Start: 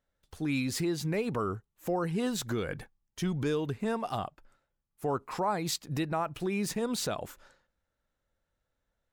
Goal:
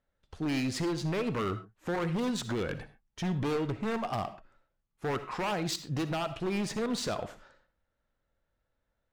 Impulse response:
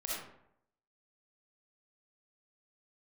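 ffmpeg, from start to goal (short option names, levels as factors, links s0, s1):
-filter_complex "[0:a]adynamicsmooth=sensitivity=5:basefreq=4900,aeval=exprs='0.0447*(abs(mod(val(0)/0.0447+3,4)-2)-1)':c=same,asplit=2[s0][s1];[1:a]atrim=start_sample=2205,atrim=end_sample=6174[s2];[s1][s2]afir=irnorm=-1:irlink=0,volume=0.299[s3];[s0][s3]amix=inputs=2:normalize=0"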